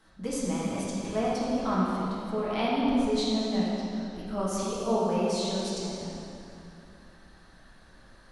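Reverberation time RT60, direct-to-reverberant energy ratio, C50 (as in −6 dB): 2.8 s, −8.0 dB, −3.0 dB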